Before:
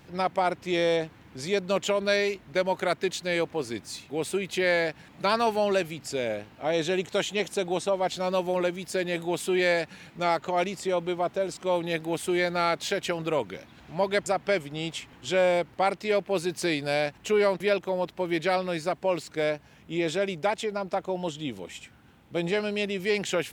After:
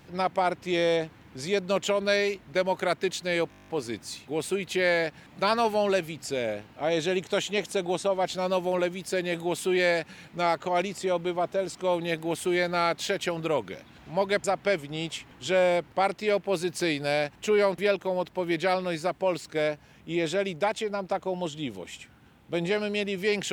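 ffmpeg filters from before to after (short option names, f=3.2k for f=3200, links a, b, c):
-filter_complex "[0:a]asplit=10[a][b][c][d][e][f][g][h][i][j];[a]atrim=end=3.522[k];[b]atrim=start=3.498:end=3.522[l];[c]atrim=start=3.498:end=3.522[m];[d]atrim=start=3.498:end=3.522[n];[e]atrim=start=3.498:end=3.522[o];[f]atrim=start=3.498:end=3.522[p];[g]atrim=start=3.498:end=3.522[q];[h]atrim=start=3.498:end=3.522[r];[i]atrim=start=3.498:end=3.522[s];[j]atrim=start=3.498[t];[k][l]acrossfade=d=0.004:c1=hsin:c2=hsin[u];[u][m]acrossfade=d=0.004:c1=hsin:c2=hsin[v];[v][n]acrossfade=d=0.004:c1=hsin:c2=hsin[w];[w][o]acrossfade=d=0.004:c1=hsin:c2=hsin[x];[x][p]acrossfade=d=0.004:c1=hsin:c2=hsin[y];[y][q]acrossfade=d=0.004:c1=hsin:c2=hsin[z];[z][r]acrossfade=d=0.004:c1=hsin:c2=hsin[aa];[aa][s]acrossfade=d=0.004:c1=hsin:c2=hsin[ab];[ab][t]acrossfade=d=0.004:c1=hsin:c2=hsin"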